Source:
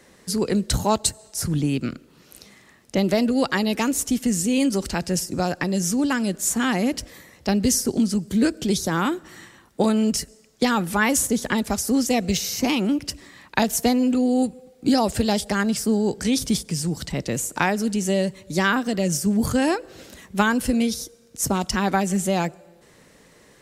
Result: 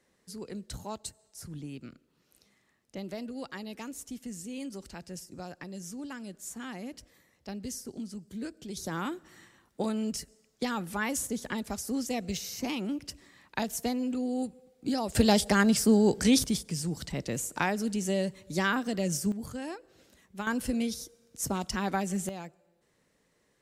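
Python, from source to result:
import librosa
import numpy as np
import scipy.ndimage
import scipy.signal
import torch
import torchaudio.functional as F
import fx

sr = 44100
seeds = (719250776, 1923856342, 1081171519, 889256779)

y = fx.gain(x, sr, db=fx.steps((0.0, -18.5), (8.77, -11.5), (15.15, -1.0), (16.44, -7.5), (19.32, -17.5), (20.47, -9.0), (22.29, -18.5)))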